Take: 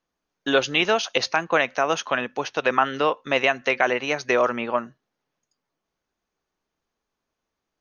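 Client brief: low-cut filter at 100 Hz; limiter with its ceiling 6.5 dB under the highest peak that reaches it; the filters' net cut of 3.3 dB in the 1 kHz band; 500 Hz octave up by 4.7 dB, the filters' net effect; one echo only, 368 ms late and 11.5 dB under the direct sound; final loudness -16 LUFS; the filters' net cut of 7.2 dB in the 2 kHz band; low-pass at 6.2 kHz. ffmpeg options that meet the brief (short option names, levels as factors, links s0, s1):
-af "highpass=100,lowpass=6200,equalizer=f=500:t=o:g=7.5,equalizer=f=1000:t=o:g=-5.5,equalizer=f=2000:t=o:g=-8.5,alimiter=limit=0.237:level=0:latency=1,aecho=1:1:368:0.266,volume=2.51"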